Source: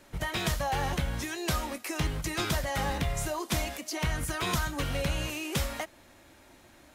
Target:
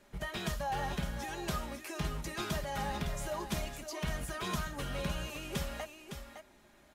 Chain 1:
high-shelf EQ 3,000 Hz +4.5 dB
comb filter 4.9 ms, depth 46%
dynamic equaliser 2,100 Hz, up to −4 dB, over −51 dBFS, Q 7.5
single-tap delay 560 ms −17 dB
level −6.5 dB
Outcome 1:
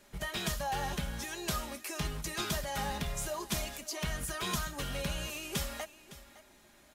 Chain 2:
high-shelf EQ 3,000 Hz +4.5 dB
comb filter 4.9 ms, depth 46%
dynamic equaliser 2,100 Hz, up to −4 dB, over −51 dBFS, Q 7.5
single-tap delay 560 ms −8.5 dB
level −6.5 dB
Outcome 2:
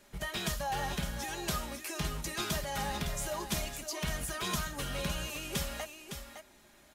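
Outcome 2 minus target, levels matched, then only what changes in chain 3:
8,000 Hz band +5.0 dB
change: high-shelf EQ 3,000 Hz −3.5 dB

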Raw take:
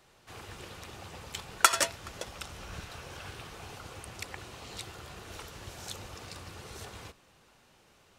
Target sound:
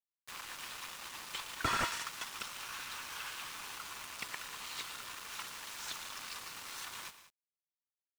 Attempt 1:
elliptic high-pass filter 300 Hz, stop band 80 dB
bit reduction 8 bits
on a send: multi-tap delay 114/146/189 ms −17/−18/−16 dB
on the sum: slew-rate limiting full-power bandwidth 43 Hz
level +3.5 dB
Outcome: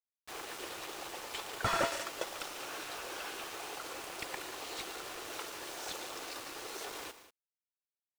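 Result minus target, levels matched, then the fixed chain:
250 Hz band +3.5 dB
elliptic high-pass filter 960 Hz, stop band 80 dB
bit reduction 8 bits
on a send: multi-tap delay 114/146/189 ms −17/−18/−16 dB
on the sum: slew-rate limiting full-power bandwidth 43 Hz
level +3.5 dB

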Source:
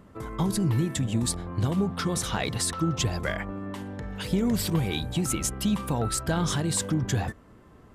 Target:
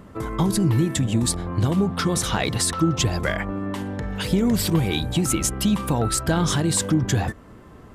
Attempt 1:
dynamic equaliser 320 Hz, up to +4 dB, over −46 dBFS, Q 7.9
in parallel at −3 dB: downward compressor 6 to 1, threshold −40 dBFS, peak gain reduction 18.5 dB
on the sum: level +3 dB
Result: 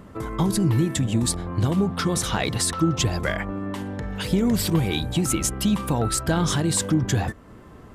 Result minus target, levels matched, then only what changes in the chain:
downward compressor: peak gain reduction +6.5 dB
change: downward compressor 6 to 1, threshold −32 dBFS, peak gain reduction 12 dB

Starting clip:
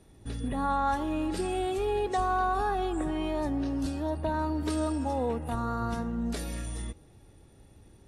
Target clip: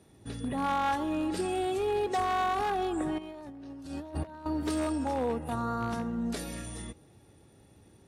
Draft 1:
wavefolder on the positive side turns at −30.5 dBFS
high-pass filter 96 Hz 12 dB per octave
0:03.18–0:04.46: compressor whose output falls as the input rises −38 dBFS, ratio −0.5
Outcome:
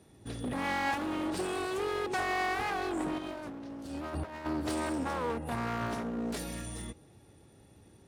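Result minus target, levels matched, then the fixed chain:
wavefolder on the positive side: distortion +17 dB
wavefolder on the positive side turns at −22.5 dBFS
high-pass filter 96 Hz 12 dB per octave
0:03.18–0:04.46: compressor whose output falls as the input rises −38 dBFS, ratio −0.5

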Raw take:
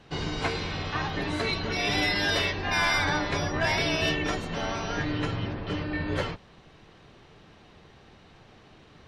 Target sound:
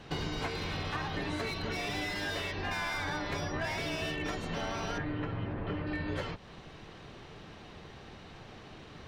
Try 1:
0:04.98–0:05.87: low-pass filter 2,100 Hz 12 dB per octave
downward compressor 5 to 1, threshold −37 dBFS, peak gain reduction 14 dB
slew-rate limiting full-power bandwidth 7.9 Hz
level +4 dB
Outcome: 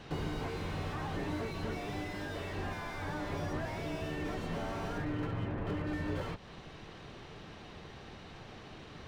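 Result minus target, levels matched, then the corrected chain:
slew-rate limiting: distortion +11 dB
0:04.98–0:05.87: low-pass filter 2,100 Hz 12 dB per octave
downward compressor 5 to 1, threshold −37 dBFS, peak gain reduction 14 dB
slew-rate limiting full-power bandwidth 30 Hz
level +4 dB

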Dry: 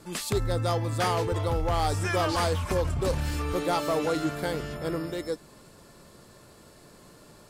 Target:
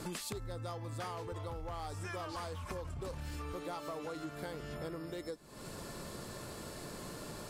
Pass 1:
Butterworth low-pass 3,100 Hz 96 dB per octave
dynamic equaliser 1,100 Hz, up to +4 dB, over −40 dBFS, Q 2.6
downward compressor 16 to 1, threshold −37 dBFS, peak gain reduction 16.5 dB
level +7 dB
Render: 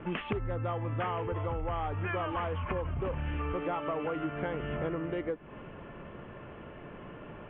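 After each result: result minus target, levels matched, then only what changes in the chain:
4,000 Hz band −9.5 dB; downward compressor: peak gain reduction −8.5 dB
remove: Butterworth low-pass 3,100 Hz 96 dB per octave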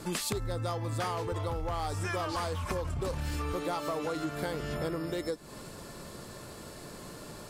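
downward compressor: peak gain reduction −8.5 dB
change: downward compressor 16 to 1, threshold −46 dBFS, peak gain reduction 25 dB

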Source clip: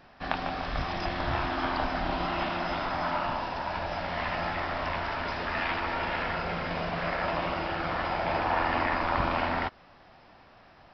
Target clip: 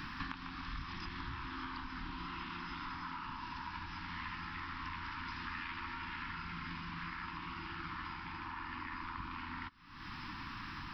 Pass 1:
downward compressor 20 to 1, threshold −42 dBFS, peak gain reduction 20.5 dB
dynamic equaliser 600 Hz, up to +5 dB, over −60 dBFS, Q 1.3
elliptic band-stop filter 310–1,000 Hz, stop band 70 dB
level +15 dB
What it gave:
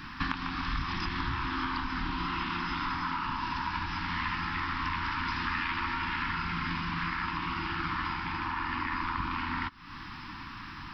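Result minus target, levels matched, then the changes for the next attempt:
downward compressor: peak gain reduction −10.5 dB
change: downward compressor 20 to 1, threshold −53 dBFS, peak gain reduction 31 dB

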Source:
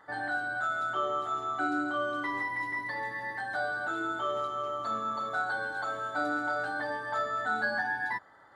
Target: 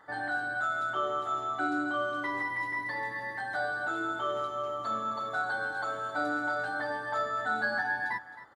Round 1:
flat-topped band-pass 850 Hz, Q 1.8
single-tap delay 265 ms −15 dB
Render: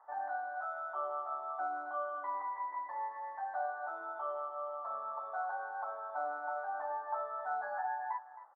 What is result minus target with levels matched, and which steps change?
1,000 Hz band +4.0 dB
remove: flat-topped band-pass 850 Hz, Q 1.8

